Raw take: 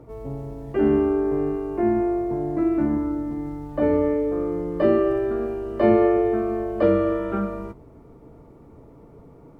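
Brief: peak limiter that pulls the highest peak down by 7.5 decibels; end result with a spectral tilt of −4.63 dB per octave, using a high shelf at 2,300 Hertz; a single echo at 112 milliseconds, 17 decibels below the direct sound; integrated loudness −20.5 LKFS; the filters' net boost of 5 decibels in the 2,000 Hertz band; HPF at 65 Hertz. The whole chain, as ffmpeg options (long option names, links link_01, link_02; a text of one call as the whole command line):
ffmpeg -i in.wav -af "highpass=65,equalizer=frequency=2000:width_type=o:gain=3.5,highshelf=frequency=2300:gain=5.5,alimiter=limit=-13.5dB:level=0:latency=1,aecho=1:1:112:0.141,volume=3dB" out.wav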